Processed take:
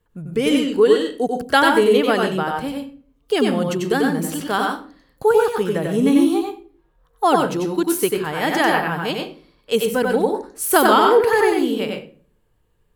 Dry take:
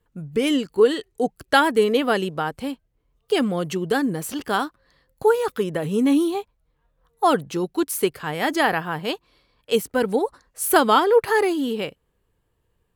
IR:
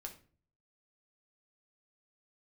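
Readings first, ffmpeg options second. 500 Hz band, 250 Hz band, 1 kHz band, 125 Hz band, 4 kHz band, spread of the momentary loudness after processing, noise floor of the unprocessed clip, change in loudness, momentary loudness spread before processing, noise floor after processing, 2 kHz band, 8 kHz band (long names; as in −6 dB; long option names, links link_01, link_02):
+3.5 dB, +3.5 dB, +3.5 dB, +3.5 dB, +3.0 dB, 11 LU, −71 dBFS, +3.5 dB, 11 LU, −63 dBFS, +3.5 dB, +3.0 dB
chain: -filter_complex "[0:a]asplit=2[link_01][link_02];[1:a]atrim=start_sample=2205,adelay=93[link_03];[link_02][link_03]afir=irnorm=-1:irlink=0,volume=2.5dB[link_04];[link_01][link_04]amix=inputs=2:normalize=0,volume=1dB"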